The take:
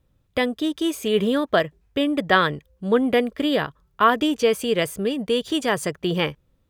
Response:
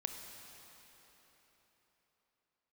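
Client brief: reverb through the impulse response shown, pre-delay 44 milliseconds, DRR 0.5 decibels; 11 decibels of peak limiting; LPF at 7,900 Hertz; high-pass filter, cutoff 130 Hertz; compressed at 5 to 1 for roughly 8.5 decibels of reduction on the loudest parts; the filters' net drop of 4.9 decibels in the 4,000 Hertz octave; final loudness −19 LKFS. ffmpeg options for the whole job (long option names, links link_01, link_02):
-filter_complex "[0:a]highpass=130,lowpass=7900,equalizer=frequency=4000:width_type=o:gain=-7,acompressor=threshold=-23dB:ratio=5,alimiter=limit=-21.5dB:level=0:latency=1,asplit=2[link_01][link_02];[1:a]atrim=start_sample=2205,adelay=44[link_03];[link_02][link_03]afir=irnorm=-1:irlink=0,volume=0dB[link_04];[link_01][link_04]amix=inputs=2:normalize=0,volume=9.5dB"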